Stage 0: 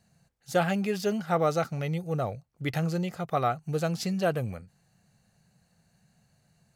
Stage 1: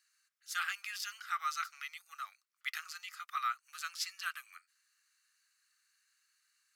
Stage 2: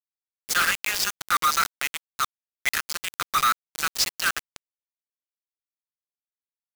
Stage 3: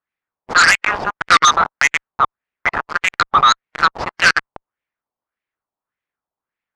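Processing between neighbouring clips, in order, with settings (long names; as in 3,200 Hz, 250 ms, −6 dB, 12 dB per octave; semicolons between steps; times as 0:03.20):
Chebyshev high-pass filter 1,200 Hz, order 5; parametric band 5,200 Hz +3 dB 0.28 octaves; level −1.5 dB
log-companded quantiser 2 bits; level +7.5 dB
auto-filter low-pass sine 1.7 Hz 850–2,200 Hz; harmonic generator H 5 −8 dB, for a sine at −7.5 dBFS; harmonic and percussive parts rebalanced percussive +4 dB; level +1 dB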